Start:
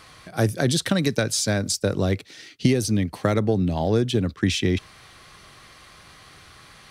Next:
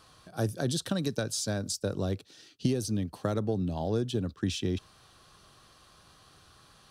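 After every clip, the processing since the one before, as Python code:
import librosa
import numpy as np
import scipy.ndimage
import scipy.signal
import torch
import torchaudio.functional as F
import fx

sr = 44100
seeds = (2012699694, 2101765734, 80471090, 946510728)

y = fx.peak_eq(x, sr, hz=2100.0, db=-14.0, octaves=0.38)
y = F.gain(torch.from_numpy(y), -8.5).numpy()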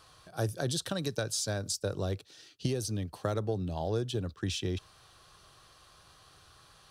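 y = fx.peak_eq(x, sr, hz=230.0, db=-8.5, octaves=0.86)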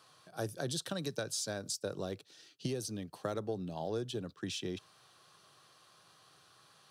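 y = scipy.signal.sosfilt(scipy.signal.butter(4, 130.0, 'highpass', fs=sr, output='sos'), x)
y = F.gain(torch.from_numpy(y), -4.0).numpy()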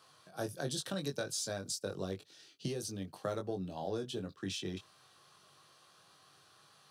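y = fx.doubler(x, sr, ms=21.0, db=-5.0)
y = F.gain(torch.from_numpy(y), -1.5).numpy()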